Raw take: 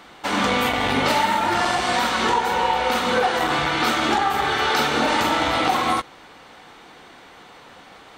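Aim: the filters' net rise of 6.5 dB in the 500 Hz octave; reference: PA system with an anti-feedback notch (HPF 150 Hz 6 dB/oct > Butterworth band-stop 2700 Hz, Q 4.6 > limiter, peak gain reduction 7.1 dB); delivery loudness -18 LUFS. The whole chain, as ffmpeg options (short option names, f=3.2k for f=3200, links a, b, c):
-af "highpass=f=150:p=1,asuperstop=centerf=2700:order=8:qfactor=4.6,equalizer=f=500:t=o:g=8,volume=2dB,alimiter=limit=-9dB:level=0:latency=1"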